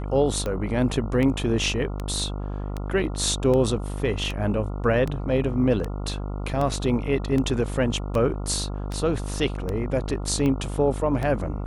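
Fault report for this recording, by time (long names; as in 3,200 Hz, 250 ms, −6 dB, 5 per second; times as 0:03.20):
mains buzz 50 Hz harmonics 28 −30 dBFS
scratch tick 78 rpm −16 dBFS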